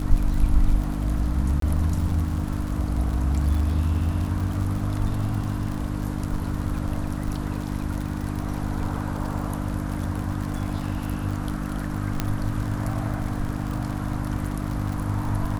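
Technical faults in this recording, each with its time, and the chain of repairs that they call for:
crackle 57 per s -29 dBFS
hum 50 Hz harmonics 6 -29 dBFS
1.60–1.62 s: dropout 23 ms
12.20 s: pop -9 dBFS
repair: de-click; de-hum 50 Hz, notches 6; interpolate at 1.60 s, 23 ms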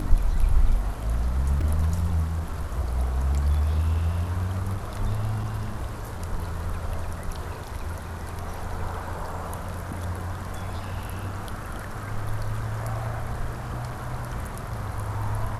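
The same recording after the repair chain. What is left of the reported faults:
nothing left

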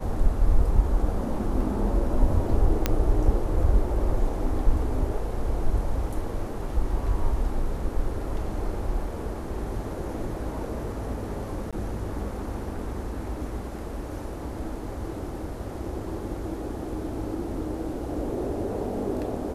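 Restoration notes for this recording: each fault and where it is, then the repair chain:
2.86 s: pop -7 dBFS
11.71–11.73 s: dropout 16 ms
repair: de-click; interpolate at 11.71 s, 16 ms

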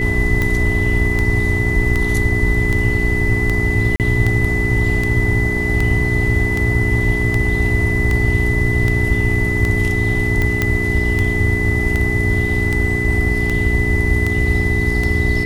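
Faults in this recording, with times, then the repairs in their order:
hum 60 Hz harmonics 7 -22 dBFS
tick 78 rpm -7 dBFS
whine 2 kHz -20 dBFS
3.96–4.00 s: dropout 38 ms
10.62 s: pop -3 dBFS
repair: de-click; de-hum 60 Hz, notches 7; band-stop 2 kHz, Q 30; interpolate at 3.96 s, 38 ms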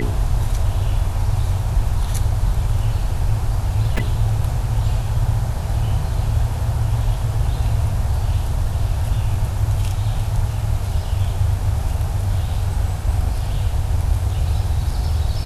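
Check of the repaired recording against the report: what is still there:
nothing left

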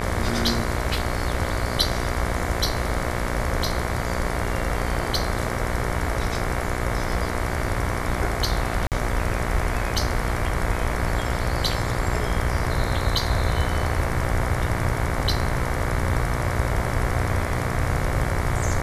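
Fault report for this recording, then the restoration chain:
buzz 60 Hz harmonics 38 -29 dBFS
8.87–8.92 s: dropout 48 ms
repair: de-hum 60 Hz, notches 38; interpolate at 8.87 s, 48 ms

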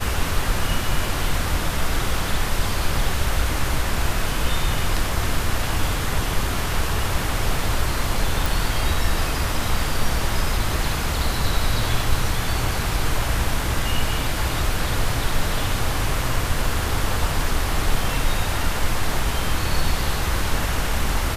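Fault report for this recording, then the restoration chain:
8.46 s: pop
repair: de-click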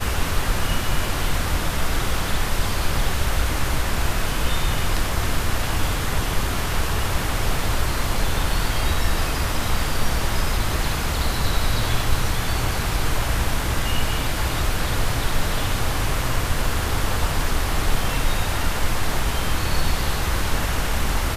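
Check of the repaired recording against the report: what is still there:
nothing left

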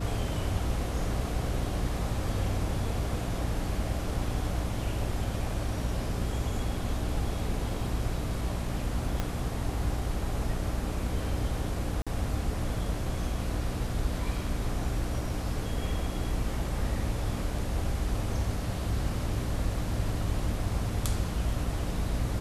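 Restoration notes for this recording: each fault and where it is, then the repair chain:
hum 60 Hz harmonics 5 -35 dBFS
9.20 s: pop -16 dBFS
12.02–12.07 s: dropout 46 ms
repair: de-click; de-hum 60 Hz, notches 5; interpolate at 12.02 s, 46 ms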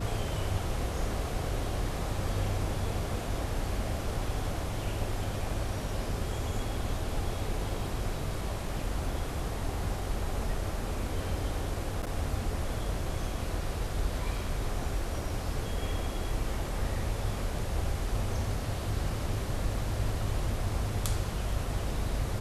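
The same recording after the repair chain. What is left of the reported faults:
9.20 s: pop

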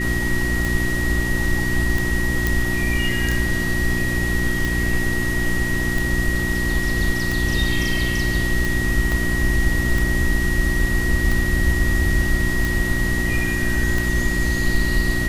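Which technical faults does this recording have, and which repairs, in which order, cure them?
hum 60 Hz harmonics 6 -25 dBFS
tick 45 rpm
whine 1.9 kHz -24 dBFS
2.47 s: pop
9.12 s: pop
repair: de-click; de-hum 60 Hz, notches 6; band-stop 1.9 kHz, Q 30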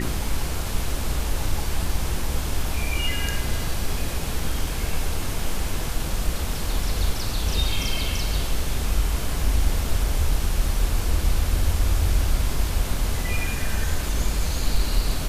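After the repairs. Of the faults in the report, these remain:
9.12 s: pop

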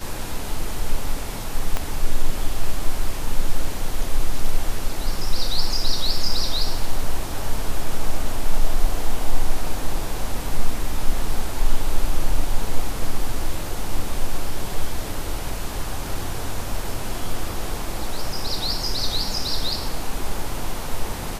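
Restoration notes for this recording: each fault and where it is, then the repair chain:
1.77 s: pop -9 dBFS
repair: de-click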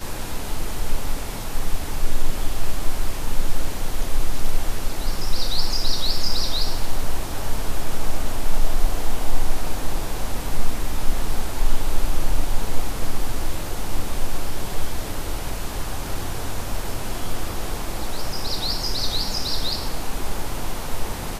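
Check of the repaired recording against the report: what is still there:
1.77 s: pop

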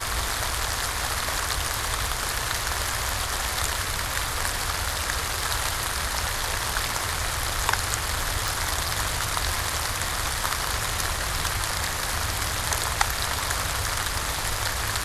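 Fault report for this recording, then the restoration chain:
crackle 23 per s -30 dBFS
8.48 s: pop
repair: de-click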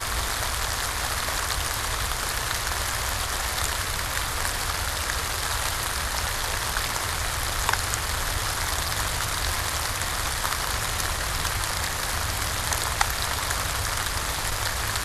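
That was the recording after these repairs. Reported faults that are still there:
nothing left

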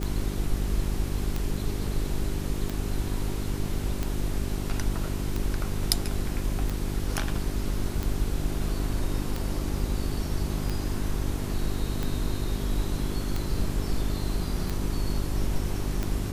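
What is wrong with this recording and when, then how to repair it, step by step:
hum 50 Hz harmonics 8 -32 dBFS
tick 45 rpm -16 dBFS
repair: de-click; de-hum 50 Hz, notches 8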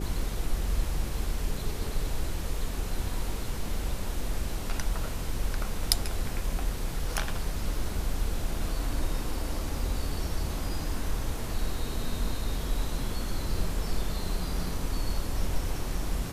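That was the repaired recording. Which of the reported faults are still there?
nothing left

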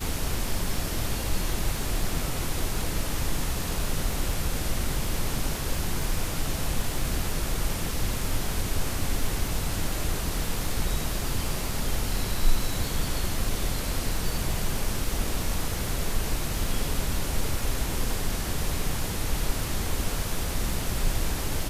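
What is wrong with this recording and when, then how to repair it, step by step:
crackle 29 per s -32 dBFS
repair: de-click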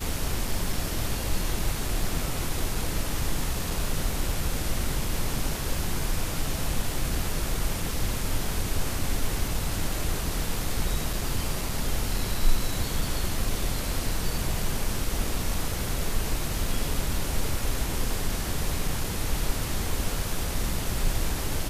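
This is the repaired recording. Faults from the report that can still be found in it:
nothing left

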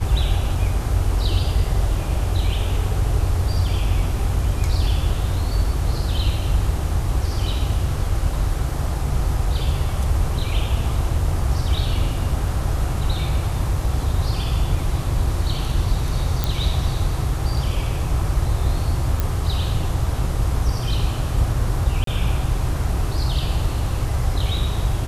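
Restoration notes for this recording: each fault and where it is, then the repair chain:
16.44 s: pop
19.20 s: pop
22.04–22.07 s: dropout 33 ms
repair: de-click; interpolate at 22.04 s, 33 ms

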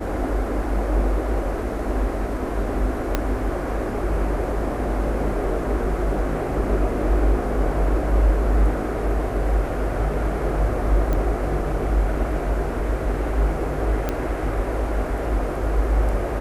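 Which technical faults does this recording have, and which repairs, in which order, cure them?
3.15 s: pop -6 dBFS
11.13 s: pop -13 dBFS
14.09 s: pop -10 dBFS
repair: de-click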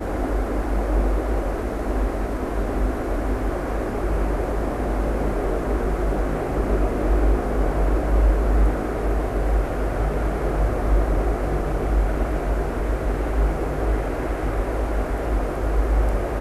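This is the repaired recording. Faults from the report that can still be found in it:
3.15 s: pop

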